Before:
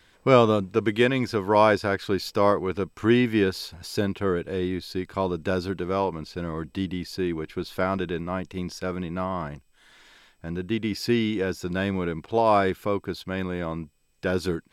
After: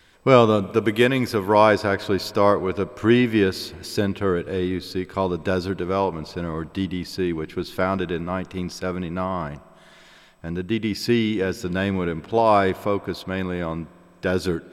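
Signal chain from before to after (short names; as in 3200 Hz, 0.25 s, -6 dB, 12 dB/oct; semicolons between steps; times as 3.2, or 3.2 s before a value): 0.62–1.54 bell 12000 Hz +12 dB 0.54 oct; spring tank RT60 3.3 s, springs 51 ms, chirp 70 ms, DRR 20 dB; gain +3 dB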